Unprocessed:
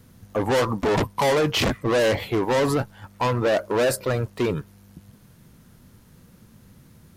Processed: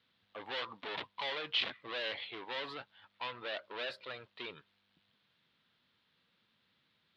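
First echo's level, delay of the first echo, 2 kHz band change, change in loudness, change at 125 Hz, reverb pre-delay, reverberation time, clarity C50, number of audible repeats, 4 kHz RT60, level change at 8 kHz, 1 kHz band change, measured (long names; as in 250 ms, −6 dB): no echo audible, no echo audible, −12.0 dB, −16.5 dB, −34.5 dB, no reverb audible, no reverb audible, no reverb audible, no echo audible, no reverb audible, below −30 dB, −18.0 dB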